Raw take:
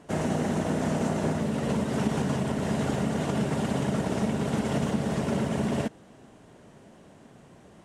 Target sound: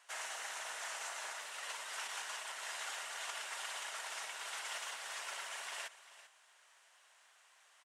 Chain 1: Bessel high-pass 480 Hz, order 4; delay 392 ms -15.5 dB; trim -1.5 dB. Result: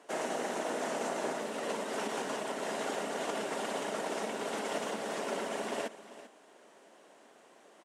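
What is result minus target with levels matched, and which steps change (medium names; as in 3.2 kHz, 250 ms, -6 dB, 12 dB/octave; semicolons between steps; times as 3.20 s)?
500 Hz band +14.5 dB
change: Bessel high-pass 1.6 kHz, order 4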